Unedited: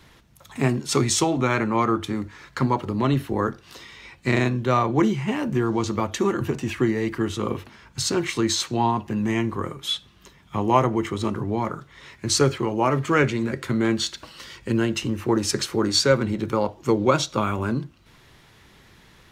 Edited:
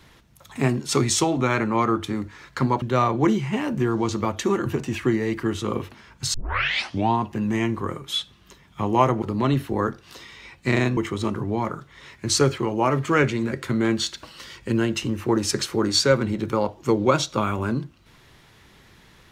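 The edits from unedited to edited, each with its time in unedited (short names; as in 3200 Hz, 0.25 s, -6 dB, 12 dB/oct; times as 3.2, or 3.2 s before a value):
2.82–4.57 move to 10.97
8.09 tape start 0.77 s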